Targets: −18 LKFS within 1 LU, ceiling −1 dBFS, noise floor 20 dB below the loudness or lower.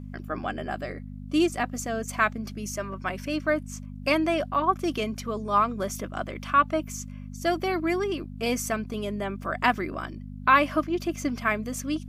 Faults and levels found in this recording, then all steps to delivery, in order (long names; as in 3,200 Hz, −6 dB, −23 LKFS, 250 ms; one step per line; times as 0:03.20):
mains hum 50 Hz; hum harmonics up to 250 Hz; level of the hum −36 dBFS; integrated loudness −27.5 LKFS; sample peak −6.5 dBFS; target loudness −18.0 LKFS
→ hum removal 50 Hz, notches 5
level +9.5 dB
brickwall limiter −1 dBFS